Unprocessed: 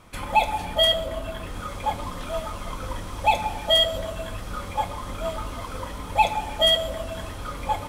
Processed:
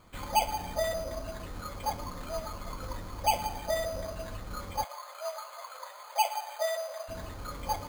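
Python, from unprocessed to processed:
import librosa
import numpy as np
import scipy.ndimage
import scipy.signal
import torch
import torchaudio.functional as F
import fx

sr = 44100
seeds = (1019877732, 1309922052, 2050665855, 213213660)

y = fx.cheby1_bandpass(x, sr, low_hz=590.0, high_hz=8800.0, order=4, at=(4.83, 7.08), fade=0.02)
y = np.repeat(scipy.signal.resample_poly(y, 1, 8), 8)[:len(y)]
y = F.gain(torch.from_numpy(y), -6.5).numpy()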